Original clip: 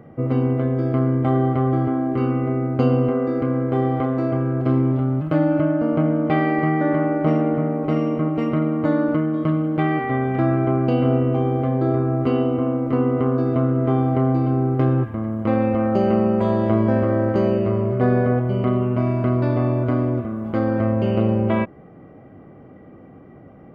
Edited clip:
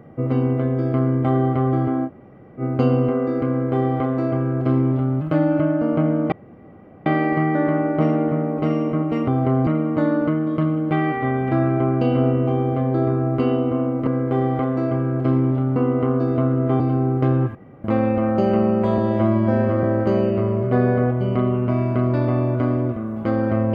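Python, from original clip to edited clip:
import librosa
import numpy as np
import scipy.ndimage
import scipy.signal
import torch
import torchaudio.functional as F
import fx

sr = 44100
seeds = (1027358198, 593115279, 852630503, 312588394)

y = fx.edit(x, sr, fx.room_tone_fill(start_s=2.07, length_s=0.53, crossfade_s=0.06),
    fx.duplicate(start_s=3.48, length_s=1.69, to_s=12.94),
    fx.insert_room_tone(at_s=6.32, length_s=0.74),
    fx.move(start_s=13.98, length_s=0.39, to_s=8.54),
    fx.room_tone_fill(start_s=15.12, length_s=0.29),
    fx.stretch_span(start_s=16.55, length_s=0.57, factor=1.5), tone=tone)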